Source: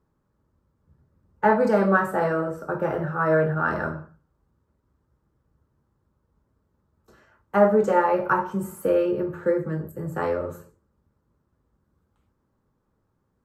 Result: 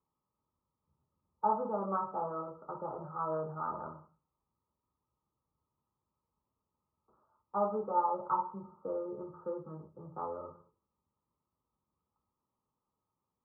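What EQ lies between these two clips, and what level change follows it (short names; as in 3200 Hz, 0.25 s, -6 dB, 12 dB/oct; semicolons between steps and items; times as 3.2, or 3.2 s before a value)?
rippled Chebyshev low-pass 1300 Hz, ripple 6 dB; tilt +3 dB/oct; bell 340 Hz -8.5 dB 1.2 oct; -4.5 dB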